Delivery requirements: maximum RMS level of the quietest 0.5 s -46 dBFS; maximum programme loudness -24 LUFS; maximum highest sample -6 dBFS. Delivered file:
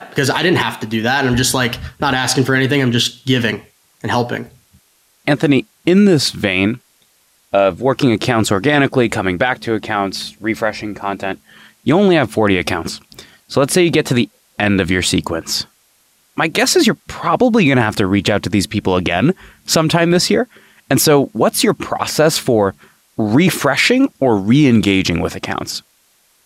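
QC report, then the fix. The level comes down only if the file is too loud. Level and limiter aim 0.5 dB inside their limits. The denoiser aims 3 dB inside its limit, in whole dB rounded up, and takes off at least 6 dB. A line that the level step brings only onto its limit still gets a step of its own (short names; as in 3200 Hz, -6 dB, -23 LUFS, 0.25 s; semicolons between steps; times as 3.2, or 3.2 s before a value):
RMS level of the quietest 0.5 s -56 dBFS: OK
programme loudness -15.0 LUFS: fail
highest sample -3.0 dBFS: fail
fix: gain -9.5 dB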